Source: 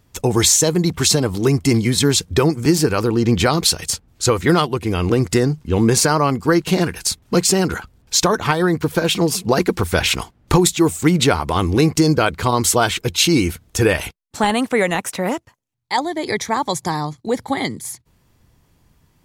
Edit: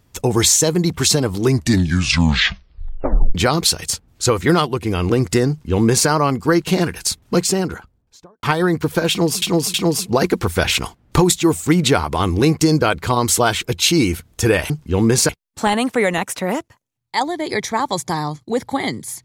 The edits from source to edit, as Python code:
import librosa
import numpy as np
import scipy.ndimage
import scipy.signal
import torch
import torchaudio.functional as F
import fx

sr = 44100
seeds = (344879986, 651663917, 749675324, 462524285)

y = fx.studio_fade_out(x, sr, start_s=7.21, length_s=1.22)
y = fx.edit(y, sr, fx.tape_stop(start_s=1.43, length_s=1.92),
    fx.duplicate(start_s=5.49, length_s=0.59, to_s=14.06),
    fx.repeat(start_s=9.1, length_s=0.32, count=3), tone=tone)